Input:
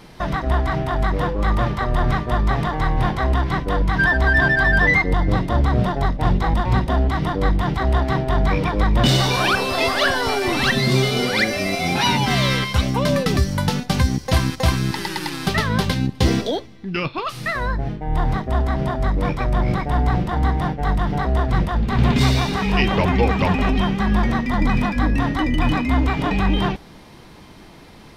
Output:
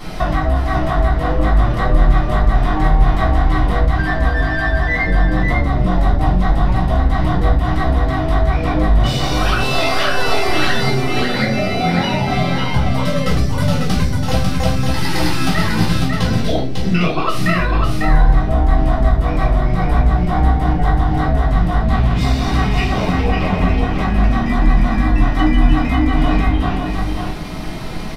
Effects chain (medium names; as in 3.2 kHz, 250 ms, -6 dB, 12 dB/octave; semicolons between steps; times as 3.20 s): 10.89–12.94 s: treble shelf 2.7 kHz -11.5 dB; compression 10:1, threshold -30 dBFS, peak gain reduction 19 dB; crackle 130 per s -60 dBFS; delay 548 ms -4 dB; reverberation RT60 0.40 s, pre-delay 3 ms, DRR -7 dB; trim +6 dB